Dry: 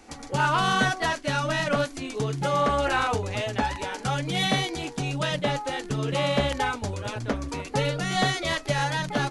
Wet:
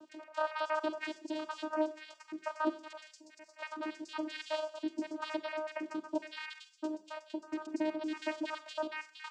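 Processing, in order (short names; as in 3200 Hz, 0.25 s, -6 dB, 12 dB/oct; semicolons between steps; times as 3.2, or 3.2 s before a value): random spectral dropouts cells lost 73%; 2.69–3.62 differentiator; in parallel at +3 dB: compressor, threshold -36 dBFS, peak gain reduction 13.5 dB; on the sum: vocoder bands 8, saw 310 Hz; on a send: thin delay 67 ms, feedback 56%, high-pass 1600 Hz, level -23.5 dB; on the sum: Schroeder reverb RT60 0.42 s, combs from 31 ms, DRR 12.5 dB; gain -8.5 dB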